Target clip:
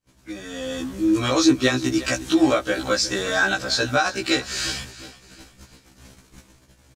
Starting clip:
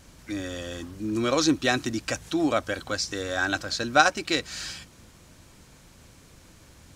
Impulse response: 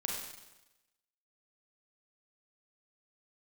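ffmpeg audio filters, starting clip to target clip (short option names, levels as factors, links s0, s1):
-filter_complex "[0:a]agate=range=0.0224:threshold=0.00355:ratio=16:detection=peak,asplit=2[s0][s1];[s1]acompressor=threshold=0.0282:ratio=6,volume=0.794[s2];[s0][s2]amix=inputs=2:normalize=0,alimiter=limit=0.251:level=0:latency=1:release=293,dynaudnorm=f=210:g=7:m=6.31,asplit=2[s3][s4];[s4]aecho=0:1:357|714|1071|1428:0.141|0.0607|0.0261|0.0112[s5];[s3][s5]amix=inputs=2:normalize=0,afftfilt=real='re*1.73*eq(mod(b,3),0)':imag='im*1.73*eq(mod(b,3),0)':win_size=2048:overlap=0.75,volume=0.668"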